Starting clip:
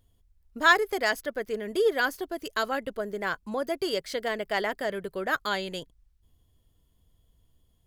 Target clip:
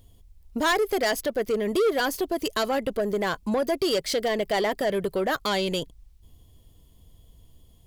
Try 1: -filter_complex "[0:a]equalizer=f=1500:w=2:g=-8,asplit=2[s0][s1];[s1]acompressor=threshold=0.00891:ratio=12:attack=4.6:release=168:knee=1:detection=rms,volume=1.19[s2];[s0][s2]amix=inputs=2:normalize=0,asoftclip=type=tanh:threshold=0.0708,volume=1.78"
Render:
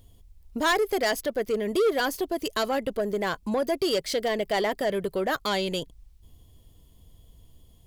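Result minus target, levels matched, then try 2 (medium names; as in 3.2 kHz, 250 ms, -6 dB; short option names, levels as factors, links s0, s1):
compression: peak gain reduction +7.5 dB
-filter_complex "[0:a]equalizer=f=1500:w=2:g=-8,asplit=2[s0][s1];[s1]acompressor=threshold=0.0224:ratio=12:attack=4.6:release=168:knee=1:detection=rms,volume=1.19[s2];[s0][s2]amix=inputs=2:normalize=0,asoftclip=type=tanh:threshold=0.0708,volume=1.78"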